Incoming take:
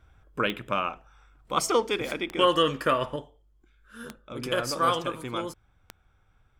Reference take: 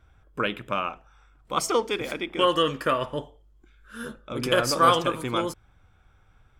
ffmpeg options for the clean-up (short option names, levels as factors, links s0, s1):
-af "adeclick=t=4,asetnsamples=n=441:p=0,asendcmd='3.16 volume volume 5.5dB',volume=1"